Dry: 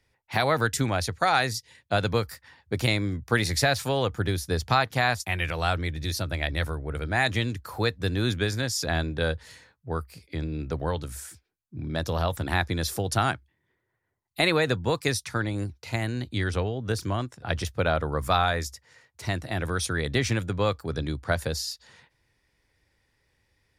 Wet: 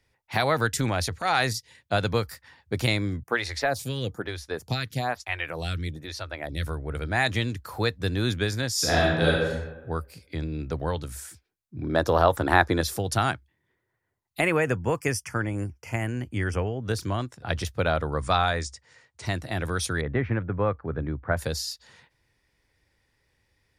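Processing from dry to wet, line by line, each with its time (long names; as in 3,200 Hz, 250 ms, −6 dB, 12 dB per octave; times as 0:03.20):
0:00.79–0:01.53: transient designer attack −9 dB, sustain +4 dB
0:03.23–0:06.67: phaser with staggered stages 1.1 Hz
0:08.73–0:09.34: thrown reverb, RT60 1.1 s, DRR −5.5 dB
0:11.82–0:12.81: flat-topped bell 680 Hz +9 dB 2.9 octaves
0:14.40–0:16.83: Butterworth band-reject 3,900 Hz, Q 1.9
0:18.04–0:19.26: linear-phase brick-wall low-pass 9,800 Hz
0:20.01–0:21.37: low-pass filter 1,900 Hz 24 dB per octave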